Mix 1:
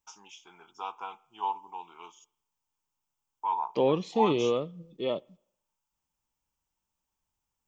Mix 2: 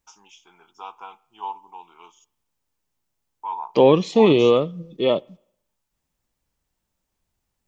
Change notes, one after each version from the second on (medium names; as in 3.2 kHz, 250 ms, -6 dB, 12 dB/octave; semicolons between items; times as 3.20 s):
second voice +11.0 dB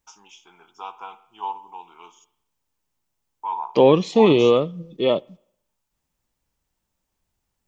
first voice: send +10.0 dB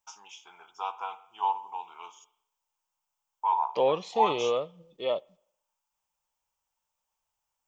second voice -9.5 dB; master: add resonant low shelf 420 Hz -9.5 dB, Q 1.5